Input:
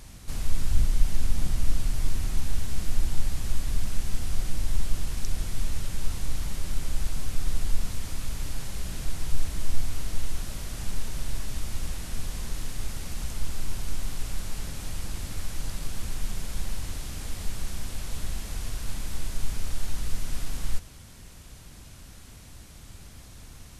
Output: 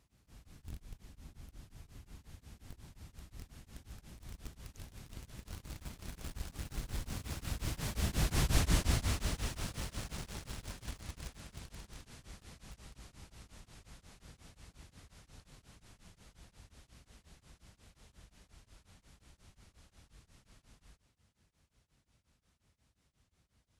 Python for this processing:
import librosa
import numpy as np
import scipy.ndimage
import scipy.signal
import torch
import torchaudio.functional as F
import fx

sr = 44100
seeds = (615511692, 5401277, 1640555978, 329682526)

p1 = fx.doppler_pass(x, sr, speed_mps=32, closest_m=12.0, pass_at_s=8.6)
p2 = scipy.signal.sosfilt(scipy.signal.butter(2, 52.0, 'highpass', fs=sr, output='sos'), p1)
p3 = fx.high_shelf(p2, sr, hz=7000.0, db=-7.5)
p4 = fx.quant_dither(p3, sr, seeds[0], bits=8, dither='none')
p5 = p3 + (p4 * librosa.db_to_amplitude(-9.5))
p6 = p5 * np.abs(np.cos(np.pi * 5.6 * np.arange(len(p5)) / sr))
y = p6 * librosa.db_to_amplitude(8.5)